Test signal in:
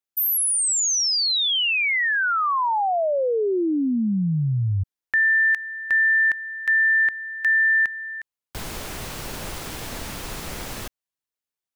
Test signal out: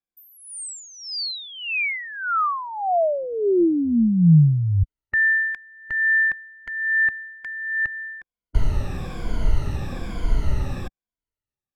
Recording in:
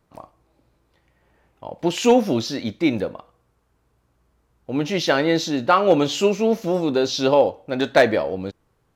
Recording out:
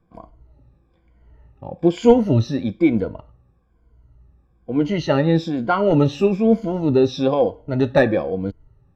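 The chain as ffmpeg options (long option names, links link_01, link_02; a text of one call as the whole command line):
ffmpeg -i in.wav -af "afftfilt=real='re*pow(10,15/40*sin(2*PI*(1.8*log(max(b,1)*sr/1024/100)/log(2)-(-1.1)*(pts-256)/sr)))':imag='im*pow(10,15/40*sin(2*PI*(1.8*log(max(b,1)*sr/1024/100)/log(2)-(-1.1)*(pts-256)/sr)))':win_size=1024:overlap=0.75,aemphasis=mode=reproduction:type=riaa,volume=-4.5dB" out.wav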